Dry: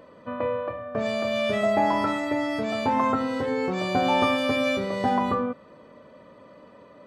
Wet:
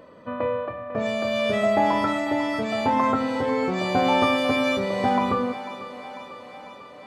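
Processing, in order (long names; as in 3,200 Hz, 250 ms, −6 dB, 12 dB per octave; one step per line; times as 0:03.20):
0:00.65–0:01.22: notch comb filter 520 Hz
feedback echo with a high-pass in the loop 496 ms, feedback 69%, high-pass 290 Hz, level −13.5 dB
level +1.5 dB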